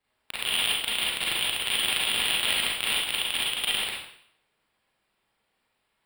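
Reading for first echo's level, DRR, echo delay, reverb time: no echo audible, −6.5 dB, no echo audible, 0.65 s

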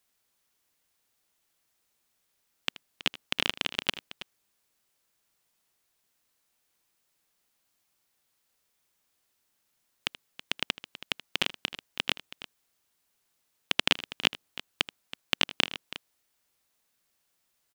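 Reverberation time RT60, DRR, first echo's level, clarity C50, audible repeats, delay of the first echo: no reverb audible, no reverb audible, −17.5 dB, no reverb audible, 2, 79 ms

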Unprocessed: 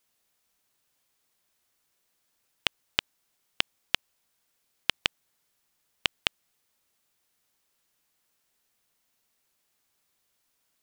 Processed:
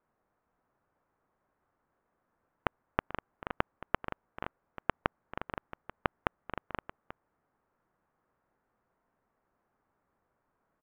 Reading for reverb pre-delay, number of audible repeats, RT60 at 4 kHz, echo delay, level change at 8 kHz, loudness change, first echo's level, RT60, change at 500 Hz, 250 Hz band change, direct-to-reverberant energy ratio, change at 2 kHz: no reverb audible, 4, no reverb audible, 439 ms, below −30 dB, −8.0 dB, −17.0 dB, no reverb audible, +7.5 dB, +7.5 dB, no reverb audible, −5.5 dB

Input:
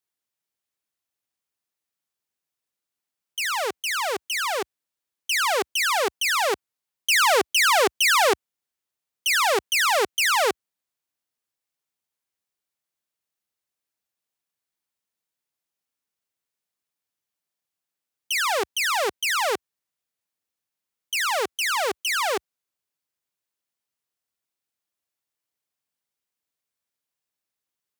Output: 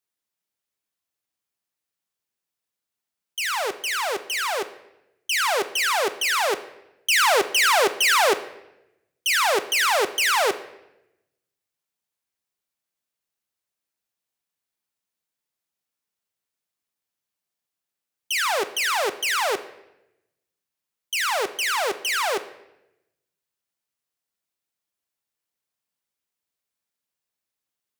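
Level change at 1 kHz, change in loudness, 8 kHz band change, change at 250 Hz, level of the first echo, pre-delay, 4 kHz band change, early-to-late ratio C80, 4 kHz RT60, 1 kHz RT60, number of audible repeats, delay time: +0.5 dB, +0.5 dB, 0.0 dB, +0.5 dB, no echo audible, 4 ms, +0.5 dB, 16.5 dB, 0.75 s, 0.85 s, no echo audible, no echo audible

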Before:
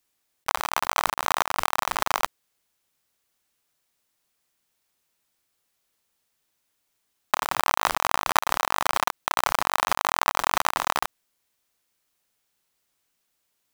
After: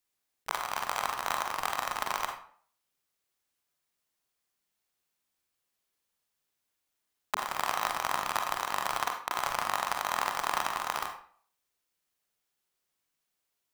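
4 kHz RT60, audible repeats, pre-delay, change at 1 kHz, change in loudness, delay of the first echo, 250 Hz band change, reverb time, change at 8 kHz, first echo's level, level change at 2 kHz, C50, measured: 0.35 s, no echo audible, 39 ms, −7.0 dB, −7.0 dB, no echo audible, −8.0 dB, 0.50 s, −7.5 dB, no echo audible, −7.0 dB, 6.5 dB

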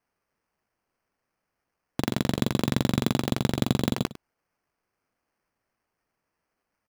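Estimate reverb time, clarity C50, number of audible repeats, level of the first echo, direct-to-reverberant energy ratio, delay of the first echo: no reverb audible, no reverb audible, 1, −16.0 dB, no reverb audible, 102 ms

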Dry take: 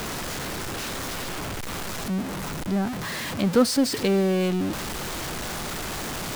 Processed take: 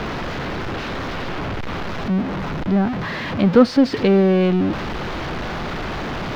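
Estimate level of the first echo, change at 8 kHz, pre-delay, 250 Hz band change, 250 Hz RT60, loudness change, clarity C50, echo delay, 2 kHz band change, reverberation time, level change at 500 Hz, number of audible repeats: no echo audible, below −10 dB, no reverb audible, +7.0 dB, no reverb audible, +6.0 dB, no reverb audible, no echo audible, +5.0 dB, no reverb audible, +7.0 dB, no echo audible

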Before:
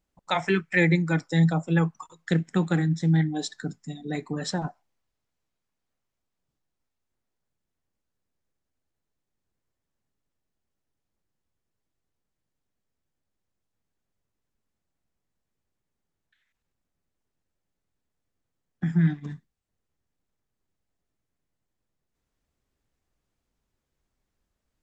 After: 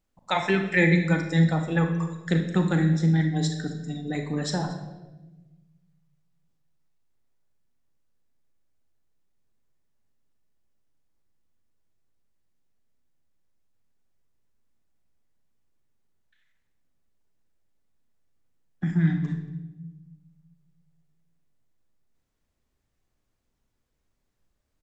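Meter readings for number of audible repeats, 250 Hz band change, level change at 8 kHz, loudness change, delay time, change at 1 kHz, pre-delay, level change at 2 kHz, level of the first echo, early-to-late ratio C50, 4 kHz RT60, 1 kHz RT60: 1, +1.0 dB, can't be measured, +0.5 dB, 232 ms, +1.0 dB, 33 ms, +1.5 dB, −22.0 dB, 6.5 dB, 0.85 s, 0.90 s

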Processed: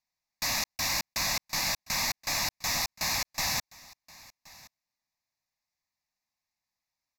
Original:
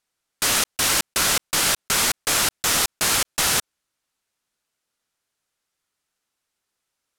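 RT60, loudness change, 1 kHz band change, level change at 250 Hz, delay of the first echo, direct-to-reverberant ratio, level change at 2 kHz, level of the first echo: no reverb audible, −9.5 dB, −8.5 dB, −10.5 dB, 1,074 ms, no reverb audible, −8.5 dB, −22.0 dB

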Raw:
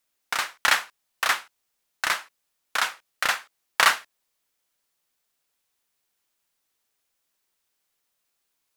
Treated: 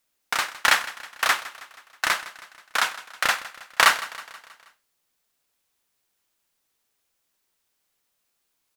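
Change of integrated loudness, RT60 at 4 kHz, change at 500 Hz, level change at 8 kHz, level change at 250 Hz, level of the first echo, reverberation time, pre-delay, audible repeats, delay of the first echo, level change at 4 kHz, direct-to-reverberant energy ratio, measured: +2.0 dB, no reverb audible, +2.5 dB, +1.5 dB, +3.5 dB, −17.0 dB, no reverb audible, no reverb audible, 4, 160 ms, +1.5 dB, no reverb audible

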